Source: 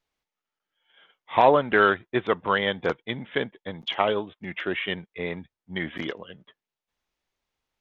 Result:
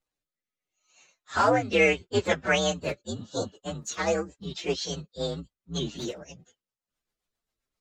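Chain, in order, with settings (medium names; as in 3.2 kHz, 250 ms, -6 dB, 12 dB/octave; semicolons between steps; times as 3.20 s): frequency axis rescaled in octaves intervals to 128%; rotary cabinet horn 0.75 Hz, later 7.5 Hz, at 3.73 s; spectral replace 3.08–3.49 s, 1.6–3.3 kHz after; trim +4 dB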